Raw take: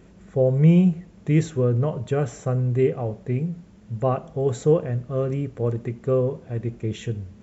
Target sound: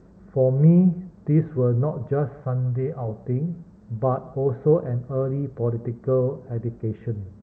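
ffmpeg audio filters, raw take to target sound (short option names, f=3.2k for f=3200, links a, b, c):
-filter_complex "[0:a]lowpass=f=1.5k:w=0.5412,lowpass=f=1.5k:w=1.3066,asettb=1/sr,asplit=3[a][b][c];[a]atrim=end=2.344[d];[b]atrim=start=2.34:end=3.08,asetpts=PTS-STARTPTS,afade=t=in:d=0.004:c=qsin,afade=t=out:st=0.736:d=0.004:c=qsin,equalizer=f=330:w=1.7:g=-12[e];[c]atrim=start=3.076[f];[d][e]acrossfade=d=0.004:c1=hsin:c2=qsin[g];[g][f]acrossfade=d=0.004:c1=qsin:c2=hsin,asplit=2[h][i];[i]aecho=0:1:180:0.0708[j];[h][j]amix=inputs=2:normalize=0" -ar 16000 -c:a g722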